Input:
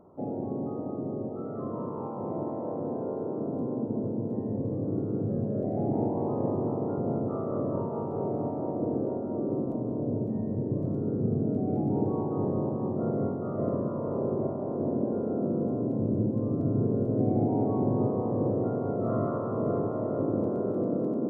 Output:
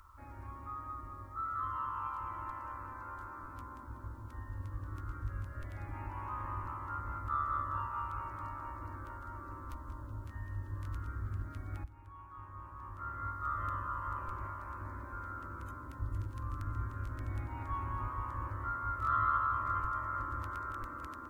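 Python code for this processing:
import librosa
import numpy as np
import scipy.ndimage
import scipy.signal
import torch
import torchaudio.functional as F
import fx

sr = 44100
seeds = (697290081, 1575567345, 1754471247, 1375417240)

y = fx.edit(x, sr, fx.fade_in_from(start_s=11.84, length_s=1.63, curve='qua', floor_db=-15.0), tone=tone)
y = scipy.signal.sosfilt(scipy.signal.cheby2(4, 40, [120.0, 750.0], 'bandstop', fs=sr, output='sos'), y)
y = F.gain(torch.from_numpy(y), 17.5).numpy()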